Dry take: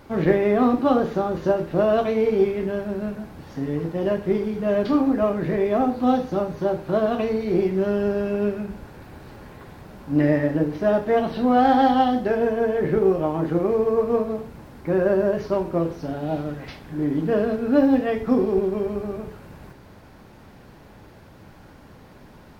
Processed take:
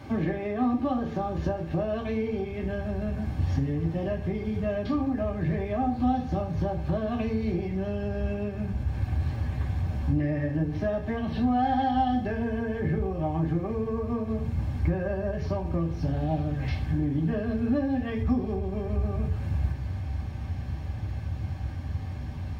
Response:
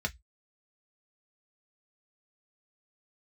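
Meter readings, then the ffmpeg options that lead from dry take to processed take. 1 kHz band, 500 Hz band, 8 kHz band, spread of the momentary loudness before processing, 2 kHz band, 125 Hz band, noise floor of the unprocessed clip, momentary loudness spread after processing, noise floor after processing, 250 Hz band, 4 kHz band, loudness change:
-6.5 dB, -11.0 dB, n/a, 11 LU, -6.5 dB, +3.5 dB, -47 dBFS, 7 LU, -35 dBFS, -5.5 dB, -6.5 dB, -7.0 dB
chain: -filter_complex "[0:a]asubboost=boost=3.5:cutoff=130,acompressor=threshold=-31dB:ratio=4[a];[1:a]atrim=start_sample=2205,asetrate=52920,aresample=44100[b];[a][b]afir=irnorm=-1:irlink=0"

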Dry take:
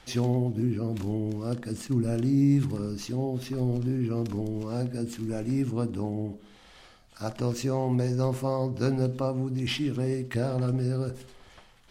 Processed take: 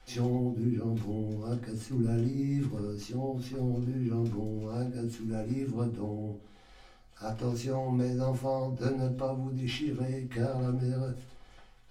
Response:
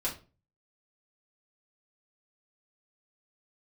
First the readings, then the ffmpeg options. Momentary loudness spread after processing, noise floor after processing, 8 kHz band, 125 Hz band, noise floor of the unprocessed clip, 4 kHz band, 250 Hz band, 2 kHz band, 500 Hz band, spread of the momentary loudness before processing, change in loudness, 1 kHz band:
6 LU, -56 dBFS, -7.0 dB, -3.5 dB, -55 dBFS, -6.0 dB, -4.5 dB, -5.0 dB, -4.0 dB, 7 LU, -4.0 dB, -3.0 dB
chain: -filter_complex "[1:a]atrim=start_sample=2205,asetrate=66150,aresample=44100[a];[0:a][a]afir=irnorm=-1:irlink=0,volume=-6.5dB"

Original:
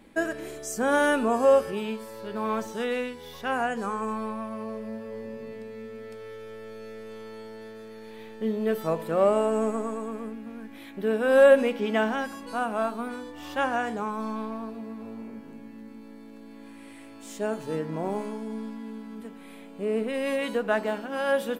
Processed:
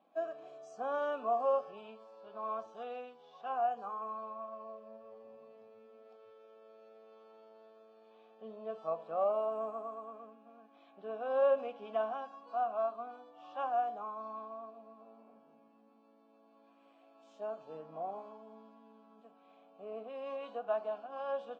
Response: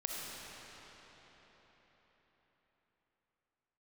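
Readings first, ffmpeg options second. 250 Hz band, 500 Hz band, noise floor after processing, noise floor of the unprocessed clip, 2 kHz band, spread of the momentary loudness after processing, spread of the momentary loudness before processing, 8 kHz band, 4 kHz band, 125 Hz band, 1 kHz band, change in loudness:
-23.5 dB, -11.0 dB, -65 dBFS, -46 dBFS, -20.5 dB, 21 LU, 21 LU, n/a, under -15 dB, under -20 dB, -6.5 dB, -10.5 dB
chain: -filter_complex "[0:a]asplit=3[a][b][c];[a]bandpass=f=730:t=q:w=8,volume=0dB[d];[b]bandpass=f=1.09k:t=q:w=8,volume=-6dB[e];[c]bandpass=f=2.44k:t=q:w=8,volume=-9dB[f];[d][e][f]amix=inputs=3:normalize=0,highpass=f=110:w=0.5412,highpass=f=110:w=1.3066,equalizer=f=150:t=q:w=4:g=5,equalizer=f=380:t=q:w=4:g=-4,equalizer=f=2.4k:t=q:w=4:g=-10,lowpass=f=6.8k:w=0.5412,lowpass=f=6.8k:w=1.3066" -ar 48000 -c:a libvorbis -b:a 32k

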